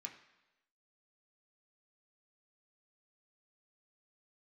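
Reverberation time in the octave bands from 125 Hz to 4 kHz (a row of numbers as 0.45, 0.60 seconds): 0.90, 0.90, 1.0, 1.0, 1.0, 1.0 seconds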